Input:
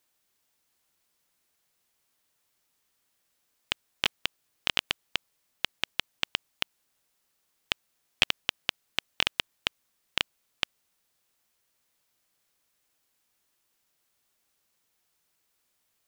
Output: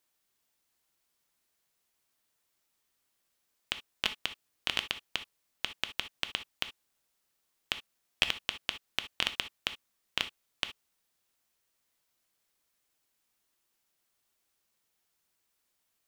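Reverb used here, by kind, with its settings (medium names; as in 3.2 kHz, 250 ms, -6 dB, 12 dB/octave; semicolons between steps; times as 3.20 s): gated-style reverb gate 90 ms flat, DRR 9 dB; trim -4 dB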